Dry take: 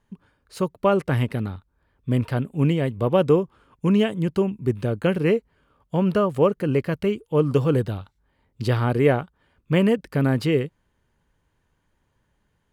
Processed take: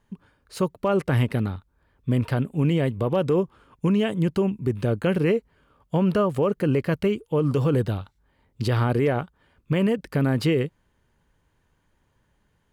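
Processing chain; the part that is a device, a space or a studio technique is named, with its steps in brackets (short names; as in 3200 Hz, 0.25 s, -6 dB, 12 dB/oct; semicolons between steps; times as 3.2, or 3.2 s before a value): clipper into limiter (hard clip -8.5 dBFS, distortion -41 dB; limiter -16 dBFS, peak gain reduction 7.5 dB); gain +2 dB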